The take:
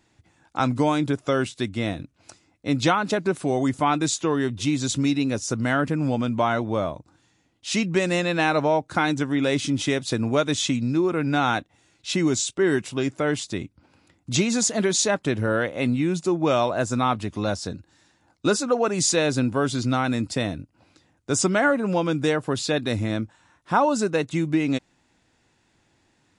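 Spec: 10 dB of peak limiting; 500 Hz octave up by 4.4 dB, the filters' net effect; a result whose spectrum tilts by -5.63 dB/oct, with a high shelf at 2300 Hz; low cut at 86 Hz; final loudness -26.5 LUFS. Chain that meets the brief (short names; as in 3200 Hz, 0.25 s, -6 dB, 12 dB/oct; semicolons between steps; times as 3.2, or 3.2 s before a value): HPF 86 Hz; bell 500 Hz +6 dB; high shelf 2300 Hz -7.5 dB; gain -1 dB; limiter -16.5 dBFS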